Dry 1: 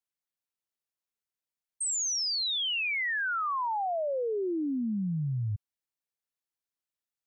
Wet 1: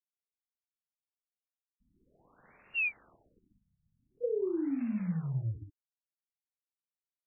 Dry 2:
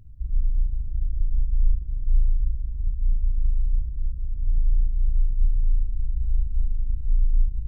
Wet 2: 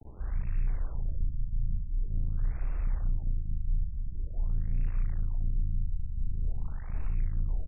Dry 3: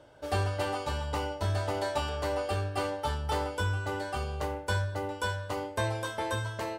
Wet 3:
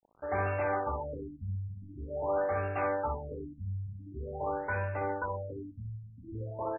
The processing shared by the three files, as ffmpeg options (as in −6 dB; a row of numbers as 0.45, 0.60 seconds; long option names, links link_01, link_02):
-af "tiltshelf=frequency=650:gain=-3.5,bandreject=frequency=50:width_type=h:width=6,bandreject=frequency=100:width_type=h:width=6,bandreject=frequency=150:width_type=h:width=6,bandreject=frequency=200:width_type=h:width=6,bandreject=frequency=250:width_type=h:width=6,bandreject=frequency=300:width_type=h:width=6,bandreject=frequency=350:width_type=h:width=6,bandreject=frequency=400:width_type=h:width=6,bandreject=frequency=450:width_type=h:width=6,bandreject=frequency=500:width_type=h:width=6,adynamicequalizer=threshold=0.00224:dfrequency=4200:dqfactor=3.8:tfrequency=4200:tqfactor=3.8:attack=5:release=100:ratio=0.375:range=2.5:mode=cutabove:tftype=bell,asoftclip=type=tanh:threshold=-22.5dB,acrusher=bits=7:mix=0:aa=0.000001,volume=27dB,asoftclip=hard,volume=-27dB,aecho=1:1:29|61:0.178|0.631,afftfilt=real='re*lt(b*sr/1024,210*pow(2800/210,0.5+0.5*sin(2*PI*0.46*pts/sr)))':imag='im*lt(b*sr/1024,210*pow(2800/210,0.5+0.5*sin(2*PI*0.46*pts/sr)))':win_size=1024:overlap=0.75"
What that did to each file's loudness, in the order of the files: −4.5, −7.5, −3.0 LU